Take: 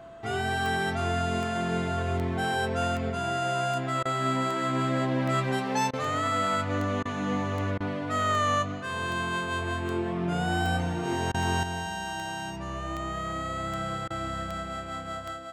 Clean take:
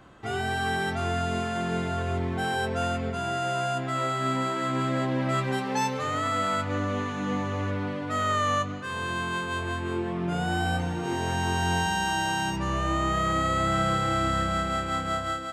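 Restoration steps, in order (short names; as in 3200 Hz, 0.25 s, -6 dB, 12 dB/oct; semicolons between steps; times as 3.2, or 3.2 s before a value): de-click; notch 670 Hz, Q 30; interpolate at 4.03/5.91/7.03/7.78/11.32/14.08, 22 ms; gain correction +7.5 dB, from 11.63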